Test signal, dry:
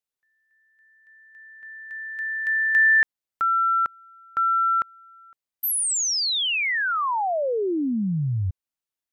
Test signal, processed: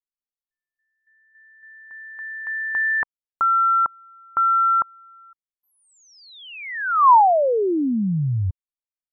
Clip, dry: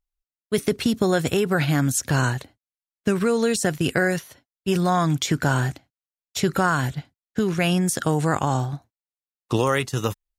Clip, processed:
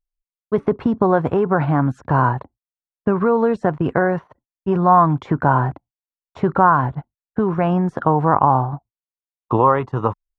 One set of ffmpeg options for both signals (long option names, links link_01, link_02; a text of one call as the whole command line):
ffmpeg -i in.wav -af "anlmdn=0.0398,lowpass=frequency=1000:width_type=q:width=3.7,volume=2.5dB" out.wav